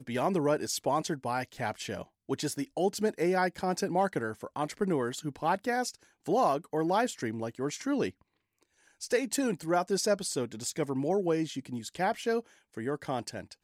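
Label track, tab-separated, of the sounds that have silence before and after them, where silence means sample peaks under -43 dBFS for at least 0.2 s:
2.290000	5.950000	sound
6.260000	8.110000	sound
9.010000	12.410000	sound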